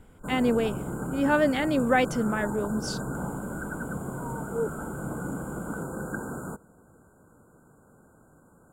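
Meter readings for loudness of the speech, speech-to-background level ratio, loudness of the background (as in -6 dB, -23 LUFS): -26.5 LUFS, 8.0 dB, -34.5 LUFS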